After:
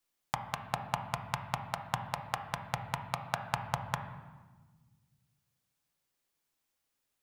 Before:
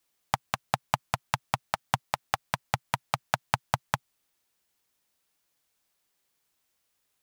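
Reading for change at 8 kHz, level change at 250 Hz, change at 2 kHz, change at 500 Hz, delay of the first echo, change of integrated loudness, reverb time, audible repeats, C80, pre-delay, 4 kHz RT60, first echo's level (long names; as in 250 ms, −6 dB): −7.0 dB, −3.5 dB, −6.5 dB, −5.0 dB, no echo audible, −5.5 dB, 1.3 s, no echo audible, 10.5 dB, 3 ms, 1.1 s, no echo audible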